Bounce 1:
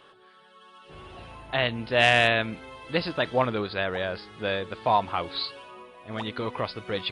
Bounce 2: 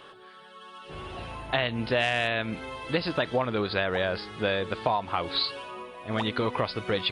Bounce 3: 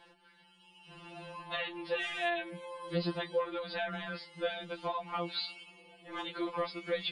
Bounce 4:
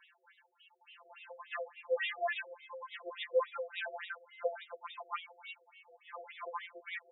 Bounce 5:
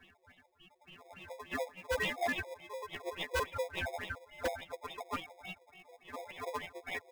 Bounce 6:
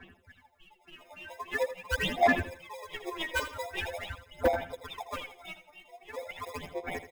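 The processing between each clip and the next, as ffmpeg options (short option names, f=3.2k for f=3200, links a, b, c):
-af "acompressor=threshold=-28dB:ratio=8,volume=5.5dB"
-af "afftfilt=real='re*2.83*eq(mod(b,8),0)':imag='im*2.83*eq(mod(b,8),0)':win_size=2048:overlap=0.75,volume=-6dB"
-af "afftfilt=real='re*between(b*sr/1024,490*pow(2800/490,0.5+0.5*sin(2*PI*3.5*pts/sr))/1.41,490*pow(2800/490,0.5+0.5*sin(2*PI*3.5*pts/sr))*1.41)':imag='im*between(b*sr/1024,490*pow(2800/490,0.5+0.5*sin(2*PI*3.5*pts/sr))/1.41,490*pow(2800/490,0.5+0.5*sin(2*PI*3.5*pts/sr))*1.41)':win_size=1024:overlap=0.75,volume=2.5dB"
-filter_complex "[0:a]asplit=2[a][b];[b]acrusher=samples=30:mix=1:aa=0.000001,volume=-3.5dB[c];[a][c]amix=inputs=2:normalize=0,aeval=exprs='0.0447*(abs(mod(val(0)/0.0447+3,4)-2)-1)':c=same,volume=1dB"
-filter_complex "[0:a]aphaser=in_gain=1:out_gain=1:delay=3.3:decay=0.75:speed=0.44:type=sinusoidal,asplit=2[a][b];[b]aecho=0:1:81|162|243:0.251|0.0653|0.017[c];[a][c]amix=inputs=2:normalize=0"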